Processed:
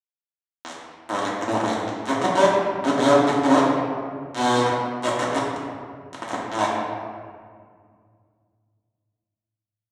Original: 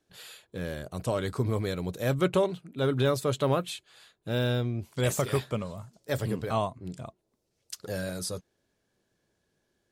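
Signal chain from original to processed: transient shaper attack -8 dB, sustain -3 dB; bit-crush 4-bit; speaker cabinet 150–7600 Hz, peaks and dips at 150 Hz -8 dB, 280 Hz +7 dB, 700 Hz +6 dB, 1000 Hz +6 dB, 2500 Hz -8 dB, 4800 Hz -9 dB; reverb RT60 2.0 s, pre-delay 3 ms, DRR -6.5 dB

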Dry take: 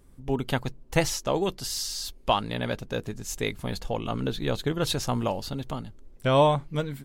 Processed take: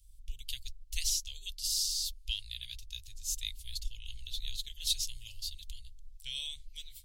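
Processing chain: inverse Chebyshev band-stop 150–1400 Hz, stop band 50 dB

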